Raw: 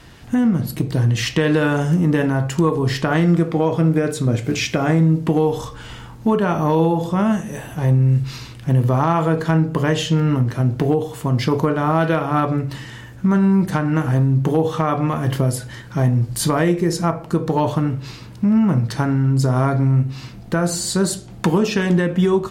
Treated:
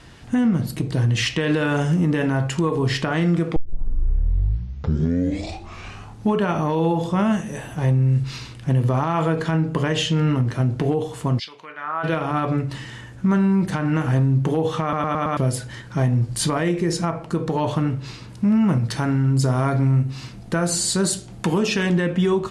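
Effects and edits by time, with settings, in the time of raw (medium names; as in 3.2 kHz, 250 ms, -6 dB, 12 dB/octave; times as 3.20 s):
3.56 s: tape start 2.84 s
11.38–12.03 s: band-pass filter 4.6 kHz -> 1.1 kHz, Q 2.8
14.82 s: stutter in place 0.11 s, 5 plays
18.29–21.83 s: treble shelf 8.7 kHz +8 dB
whole clip: dynamic bell 2.7 kHz, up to +4 dB, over -39 dBFS, Q 1.2; steep low-pass 11 kHz 36 dB/octave; peak limiter -10.5 dBFS; trim -1.5 dB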